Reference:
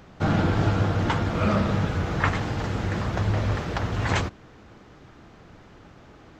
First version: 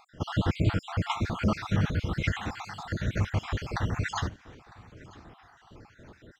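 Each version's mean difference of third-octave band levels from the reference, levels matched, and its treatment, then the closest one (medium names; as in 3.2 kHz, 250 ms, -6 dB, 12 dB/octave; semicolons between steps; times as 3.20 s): 6.0 dB: random holes in the spectrogram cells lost 56%; dynamic bell 550 Hz, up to -5 dB, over -41 dBFS, Q 0.86; on a send: feedback delay 954 ms, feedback 28%, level -22.5 dB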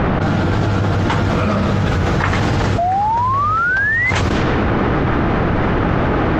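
9.0 dB: level-controlled noise filter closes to 1.9 kHz, open at -22.5 dBFS; painted sound rise, 2.78–4.11 s, 670–2100 Hz -16 dBFS; level flattener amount 100%; trim -1 dB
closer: first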